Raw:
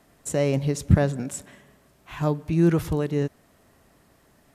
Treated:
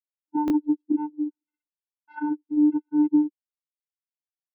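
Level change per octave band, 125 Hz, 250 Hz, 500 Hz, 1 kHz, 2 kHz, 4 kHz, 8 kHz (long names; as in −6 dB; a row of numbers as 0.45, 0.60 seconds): below −30 dB, +3.5 dB, below −10 dB, +1.5 dB, −10.0 dB, below −15 dB, below −25 dB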